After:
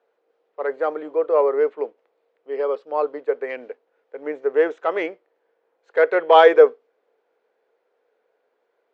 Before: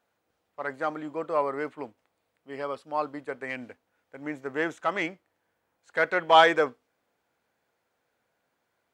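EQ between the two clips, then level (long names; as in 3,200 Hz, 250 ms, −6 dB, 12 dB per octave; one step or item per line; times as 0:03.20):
high-pass with resonance 440 Hz, resonance Q 5.3
high-frequency loss of the air 180 metres
+2.0 dB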